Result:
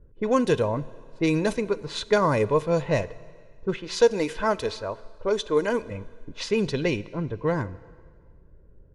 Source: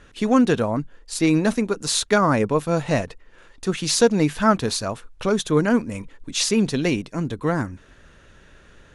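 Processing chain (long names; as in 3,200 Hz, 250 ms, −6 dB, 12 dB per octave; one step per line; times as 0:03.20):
low-pass that shuts in the quiet parts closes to 310 Hz, open at −14 dBFS
0:03.74–0:05.91: parametric band 140 Hz −14.5 dB 0.9 octaves
comb filter 2 ms, depth 50%
dynamic equaliser 1,400 Hz, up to −7 dB, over −40 dBFS, Q 4.2
dense smooth reverb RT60 1.9 s, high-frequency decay 0.95×, DRR 17.5 dB
level −3 dB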